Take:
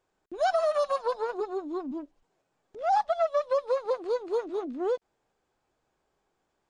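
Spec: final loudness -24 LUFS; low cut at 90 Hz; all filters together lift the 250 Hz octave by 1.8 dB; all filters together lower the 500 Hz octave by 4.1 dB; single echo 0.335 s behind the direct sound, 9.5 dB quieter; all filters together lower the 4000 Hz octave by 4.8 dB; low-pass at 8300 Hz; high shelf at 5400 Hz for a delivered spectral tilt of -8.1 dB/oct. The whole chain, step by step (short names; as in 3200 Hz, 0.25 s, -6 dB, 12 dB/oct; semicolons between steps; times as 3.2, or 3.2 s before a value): HPF 90 Hz; LPF 8300 Hz; bell 250 Hz +6 dB; bell 500 Hz -6.5 dB; bell 4000 Hz -8.5 dB; high shelf 5400 Hz +6 dB; echo 0.335 s -9.5 dB; gain +8 dB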